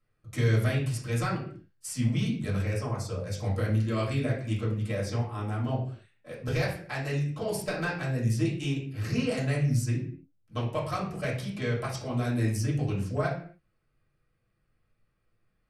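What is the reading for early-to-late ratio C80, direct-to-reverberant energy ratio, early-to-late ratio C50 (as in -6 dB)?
10.5 dB, -7.5 dB, 6.0 dB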